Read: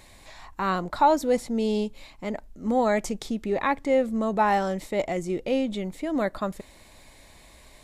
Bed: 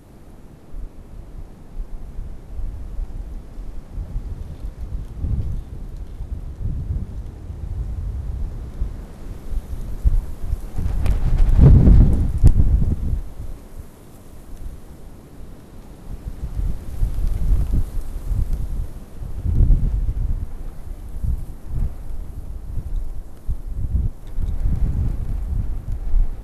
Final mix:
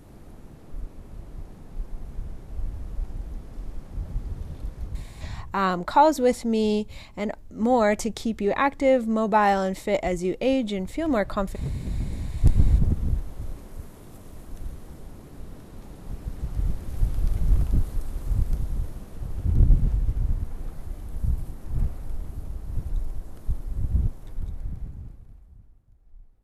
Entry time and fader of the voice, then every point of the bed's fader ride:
4.95 s, +2.5 dB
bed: 4.86 s -3 dB
5.66 s -20.5 dB
11.86 s -20.5 dB
12.63 s -2.5 dB
24.08 s -2.5 dB
25.84 s -31.5 dB

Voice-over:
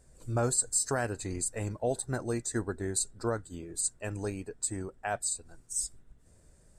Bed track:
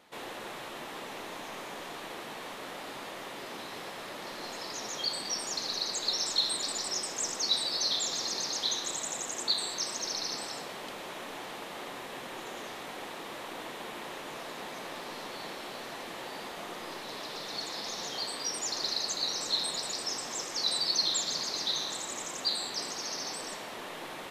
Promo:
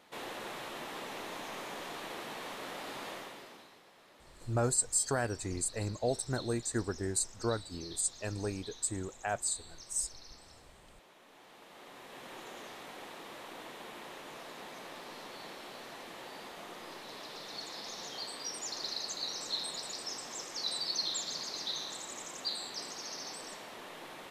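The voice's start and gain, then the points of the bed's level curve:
4.20 s, -1.5 dB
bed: 3.13 s -1 dB
3.82 s -19 dB
11.20 s -19 dB
12.31 s -6 dB

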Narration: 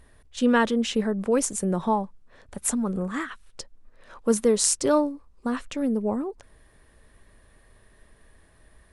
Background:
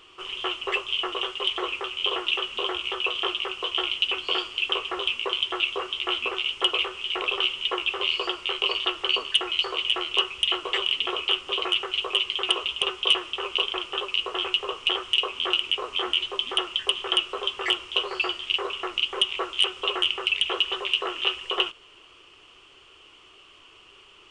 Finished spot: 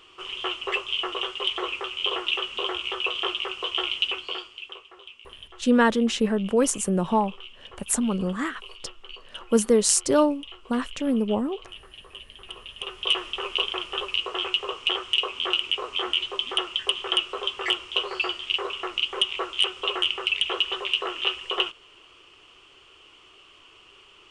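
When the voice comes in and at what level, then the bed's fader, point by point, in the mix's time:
5.25 s, +1.5 dB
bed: 4.05 s -0.5 dB
4.89 s -19 dB
12.43 s -19 dB
13.19 s -0.5 dB

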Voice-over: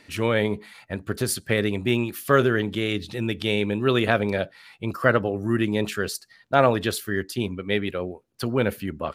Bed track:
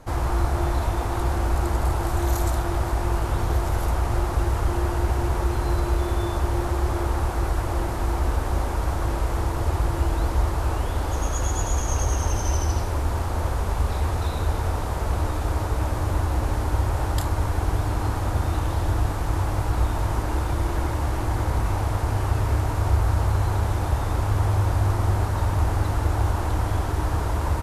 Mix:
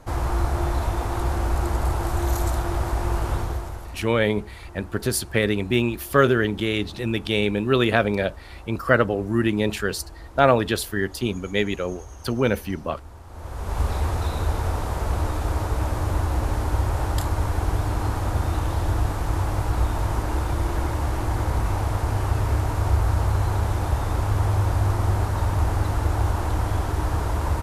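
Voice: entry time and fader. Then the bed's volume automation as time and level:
3.85 s, +1.5 dB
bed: 3.34 s -0.5 dB
4.06 s -18 dB
13.23 s -18 dB
13.80 s 0 dB

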